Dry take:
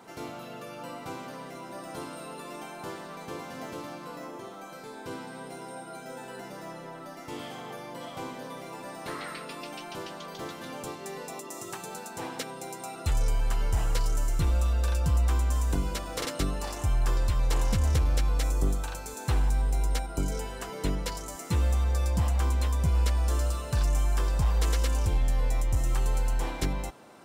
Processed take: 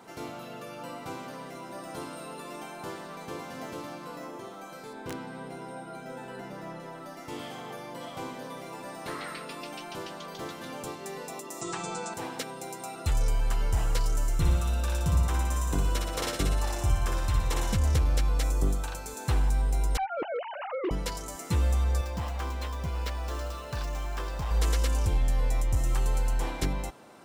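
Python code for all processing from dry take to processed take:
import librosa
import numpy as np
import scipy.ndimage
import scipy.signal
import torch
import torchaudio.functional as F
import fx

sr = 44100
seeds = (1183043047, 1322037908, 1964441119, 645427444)

y = fx.chain(x, sr, fx.bass_treble(bass_db=4, treble_db=-7),
    fx.overflow_wrap(gain_db=26.5), at=(4.93, 6.8))
y = fx.chain(y, sr, fx.steep_lowpass(hz=8700.0, slope=72),
    fx.comb(ms=6.0, depth=0.94),
    fx.env_flatten(amount_pct=50), at=(11.61, 12.14))
y = fx.chain(y, sr, fx.notch(hz=4600.0, q=13.0),
    fx.room_flutter(wall_m=10.3, rt60_s=0.82), at=(14.36, 17.75))
y = fx.chain(y, sr, fx.sine_speech(),
    fx.clip_hard(threshold_db=-25.0),
    fx.air_absorb(metres=340.0), at=(19.97, 20.91))
y = fx.chain(y, sr, fx.median_filter(points=5),
    fx.low_shelf(hz=260.0, db=-9.0), at=(22.01, 24.51))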